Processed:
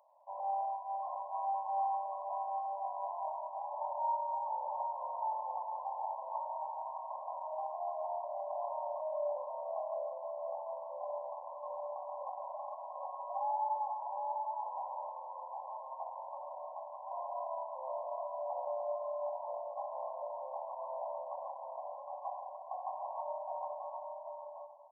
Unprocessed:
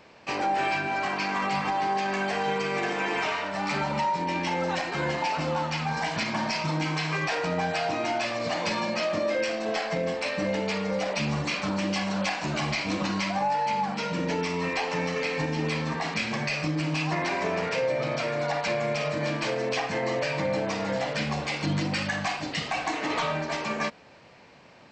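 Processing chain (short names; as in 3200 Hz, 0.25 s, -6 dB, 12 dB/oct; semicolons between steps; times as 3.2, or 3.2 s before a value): brick-wall FIR band-pass 540–1100 Hz; tilt +2 dB/oct; tapped delay 0.206/0.444/0.762 s -14.5/-17.5/-4 dB; on a send at -7 dB: reverb, pre-delay 81 ms; on the sum: gain -8.5 dB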